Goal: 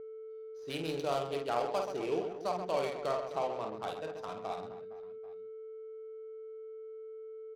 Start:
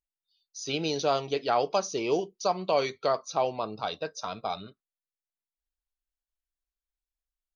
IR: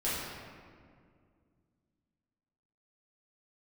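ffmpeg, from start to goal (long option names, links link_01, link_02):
-af "aecho=1:1:50|130|258|462.8|790.5:0.631|0.398|0.251|0.158|0.1,aeval=exprs='val(0)+0.02*sin(2*PI*440*n/s)':channel_layout=same,adynamicsmooth=sensitivity=4.5:basefreq=870,volume=-8.5dB"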